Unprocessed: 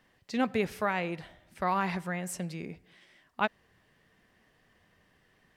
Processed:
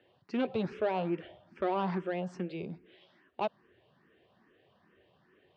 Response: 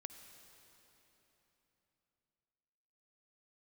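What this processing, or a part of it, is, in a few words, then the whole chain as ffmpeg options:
barber-pole phaser into a guitar amplifier: -filter_complex "[0:a]asettb=1/sr,asplit=3[link_01][link_02][link_03];[link_01]atrim=end=0.804[link_04];[link_02]atrim=start=0.8:end=2.47,asetpts=PTS-STARTPTS,afade=type=in:duration=0.004:curve=qsin,afade=type=out:start_time=1.666:duration=0.004:curve=qsin,bandreject=frequency=3900:width=6.5[link_05];[link_03]atrim=start=2.466[link_06];[link_04][link_05]acrossfade=duration=0.004:curve1=hsin:curve2=qsin[link_07];[link_07][link_06]acrossfade=duration=0.004:curve1=qsin:curve2=hsin,asplit=2[link_08][link_09];[link_09]afreqshift=2.4[link_10];[link_08][link_10]amix=inputs=2:normalize=1,asoftclip=type=tanh:threshold=-29.5dB,highpass=100,equalizer=frequency=370:width_type=q:width=4:gain=9,equalizer=frequency=570:width_type=q:width=4:gain=4,equalizer=frequency=2000:width_type=q:width=4:gain=-8,lowpass=frequency=3800:width=0.5412,lowpass=frequency=3800:width=1.3066,volume=3dB"

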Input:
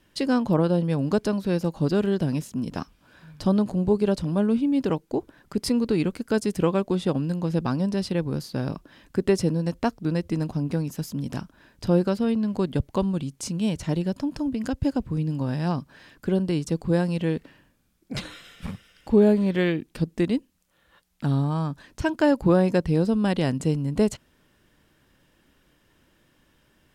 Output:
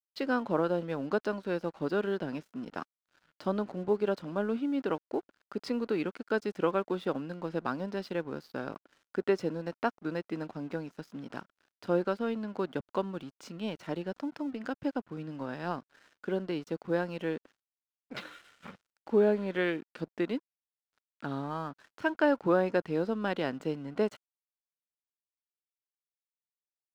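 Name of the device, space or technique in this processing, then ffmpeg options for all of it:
pocket radio on a weak battery: -af "highpass=320,lowpass=3400,aeval=exprs='sgn(val(0))*max(abs(val(0))-0.00266,0)':channel_layout=same,equalizer=frequency=1400:width_type=o:width=0.32:gain=7,volume=-4dB"

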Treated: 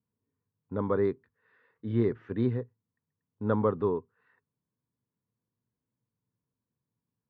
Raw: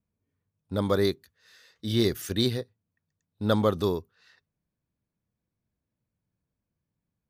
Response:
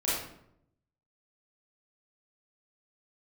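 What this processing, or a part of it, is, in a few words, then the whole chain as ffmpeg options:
bass cabinet: -af "highpass=76,equalizer=frequency=80:width_type=q:width=4:gain=-5,equalizer=frequency=120:width_type=q:width=4:gain=8,equalizer=frequency=250:width_type=q:width=4:gain=6,equalizer=frequency=440:width_type=q:width=4:gain=7,equalizer=frequency=640:width_type=q:width=4:gain=-4,equalizer=frequency=1000:width_type=q:width=4:gain=8,lowpass=frequency=2000:width=0.5412,lowpass=frequency=2000:width=1.3066,volume=-6dB"

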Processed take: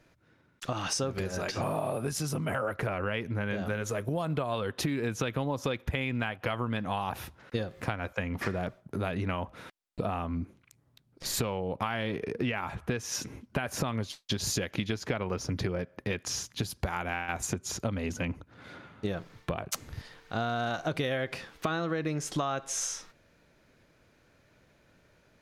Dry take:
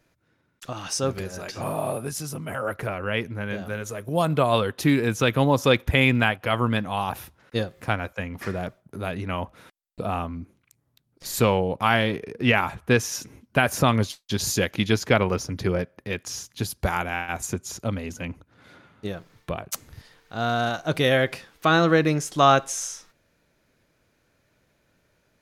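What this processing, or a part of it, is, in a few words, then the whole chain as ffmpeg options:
serial compression, peaks first: -af "highshelf=frequency=8500:gain=-10,acompressor=threshold=-26dB:ratio=6,acompressor=threshold=-32dB:ratio=3,volume=3.5dB"

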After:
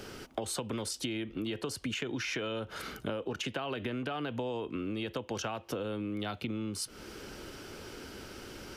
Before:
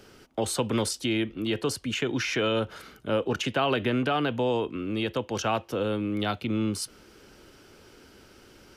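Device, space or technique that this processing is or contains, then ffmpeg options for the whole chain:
serial compression, leveller first: -af "acompressor=threshold=-28dB:ratio=3,acompressor=threshold=-41dB:ratio=5,volume=7dB"

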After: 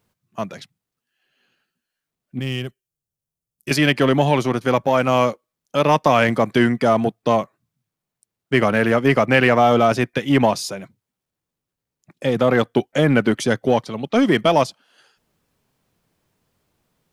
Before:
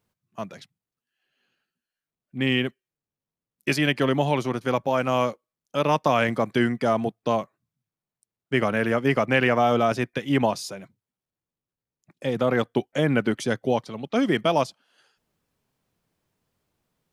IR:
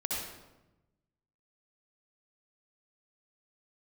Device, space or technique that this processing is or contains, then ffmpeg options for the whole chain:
parallel distortion: -filter_complex "[0:a]asplit=2[link_01][link_02];[link_02]asoftclip=type=hard:threshold=-21dB,volume=-8.5dB[link_03];[link_01][link_03]amix=inputs=2:normalize=0,asettb=1/sr,asplit=3[link_04][link_05][link_06];[link_04]atrim=end=2.394[link_07];[link_05]atrim=start=2.39:end=3.71,asetpts=PTS-STARTPTS,afade=type=in:duration=0.004:curve=qsin,afade=type=out:start_time=1.316:duration=0.004:curve=qsin,equalizer=frequency=250:width_type=o:width=1:gain=-11,equalizer=frequency=500:width_type=o:width=1:gain=-6,equalizer=frequency=1000:width_type=o:width=1:gain=-8,equalizer=frequency=2000:width_type=o:width=1:gain=-11,equalizer=frequency=4000:width_type=o:width=1:gain=-6[link_08];[link_06]atrim=start=3.706[link_09];[link_07][link_08]acrossfade=duration=0.004:curve1=hsin:curve2=qsin[link_10];[link_10][link_09]acrossfade=duration=0.004:curve1=qsin:curve2=hsin,volume=4dB"

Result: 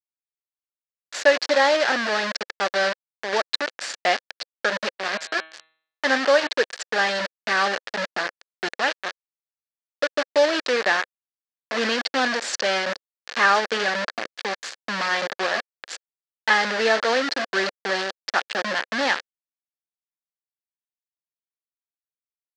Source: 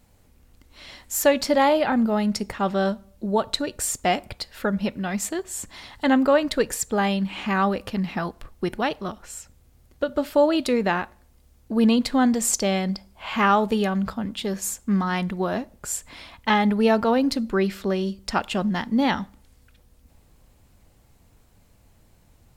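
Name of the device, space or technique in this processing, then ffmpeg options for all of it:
hand-held game console: -filter_complex "[0:a]acrusher=bits=3:mix=0:aa=0.000001,highpass=480,equalizer=frequency=520:width_type=q:width=4:gain=4,equalizer=frequency=930:width_type=q:width=4:gain=-3,equalizer=frequency=1700:width_type=q:width=4:gain=9,equalizer=frequency=4500:width_type=q:width=4:gain=4,lowpass=frequency=5700:width=0.5412,lowpass=frequency=5700:width=1.3066,asplit=3[link_01][link_02][link_03];[link_01]afade=type=out:start_time=4.99:duration=0.02[link_04];[link_02]bandreject=frequency=159.7:width_type=h:width=4,bandreject=frequency=319.4:width_type=h:width=4,bandreject=frequency=479.1:width_type=h:width=4,bandreject=frequency=638.8:width_type=h:width=4,bandreject=frequency=798.5:width_type=h:width=4,bandreject=frequency=958.2:width_type=h:width=4,bandreject=frequency=1117.9:width_type=h:width=4,bandreject=frequency=1277.6:width_type=h:width=4,bandreject=frequency=1437.3:width_type=h:width=4,bandreject=frequency=1597:width_type=h:width=4,bandreject=frequency=1756.7:width_type=h:width=4,bandreject=frequency=1916.4:width_type=h:width=4,bandreject=frequency=2076.1:width_type=h:width=4,bandreject=frequency=2235.8:width_type=h:width=4,bandreject=frequency=2395.5:width_type=h:width=4,bandreject=frequency=2555.2:width_type=h:width=4,bandreject=frequency=2714.9:width_type=h:width=4,bandreject=frequency=2874.6:width_type=h:width=4,bandreject=frequency=3034.3:width_type=h:width=4,bandreject=frequency=3194:width_type=h:width=4,bandreject=frequency=3353.7:width_type=h:width=4,bandreject=frequency=3513.4:width_type=h:width=4,bandreject=frequency=3673.1:width_type=h:width=4,bandreject=frequency=3832.8:width_type=h:width=4,bandreject=frequency=3992.5:width_type=h:width=4,bandreject=frequency=4152.2:width_type=h:width=4,afade=type=in:start_time=4.99:duration=0.02,afade=type=out:start_time=6.47:duration=0.02[link_05];[link_03]afade=type=in:start_time=6.47:duration=0.02[link_06];[link_04][link_05][link_06]amix=inputs=3:normalize=0"

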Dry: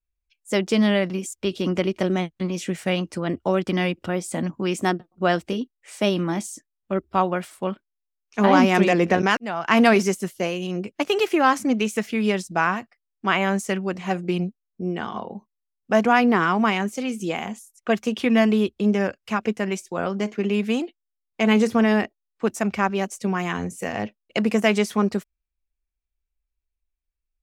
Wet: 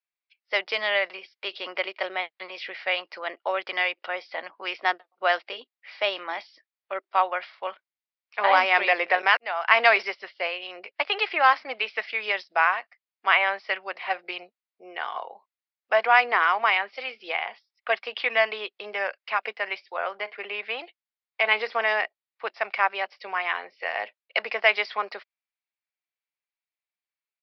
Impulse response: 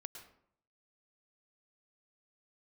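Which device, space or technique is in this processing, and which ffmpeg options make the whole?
musical greeting card: -filter_complex "[0:a]aresample=11025,aresample=44100,highpass=frequency=610:width=0.5412,highpass=frequency=610:width=1.3066,equalizer=frequency=2100:width_type=o:width=0.48:gain=6,asettb=1/sr,asplit=3[link_01][link_02][link_03];[link_01]atrim=end=19.964[link_04];[link_02]atrim=start=19.96:end=20.79,asetpts=PTS-STARTPTS,afade=type=in:duration=0.004:curve=qsin,afade=type=out:start_time=0.826:duration=0.004:curve=qsin,bass=frequency=250:gain=-1,treble=frequency=4000:gain=-8[link_05];[link_03]atrim=start=20.786[link_06];[link_04][link_05]acrossfade=duration=0.004:curve1=hsin:curve2=qsin[link_07];[link_07][link_06]acrossfade=duration=0.004:curve1=qsin:curve2=hsin"

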